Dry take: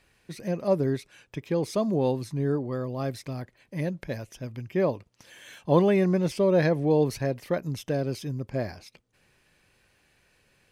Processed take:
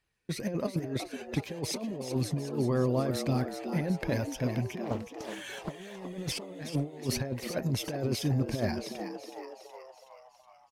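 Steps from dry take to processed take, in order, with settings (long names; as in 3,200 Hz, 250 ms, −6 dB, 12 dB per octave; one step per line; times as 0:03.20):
spectral magnitudes quantised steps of 15 dB
noise gate with hold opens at −52 dBFS
compressor whose output falls as the input rises −31 dBFS, ratio −0.5
echo with shifted repeats 371 ms, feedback 56%, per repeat +100 Hz, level −9 dB
0:04.84–0:05.97: highs frequency-modulated by the lows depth 0.71 ms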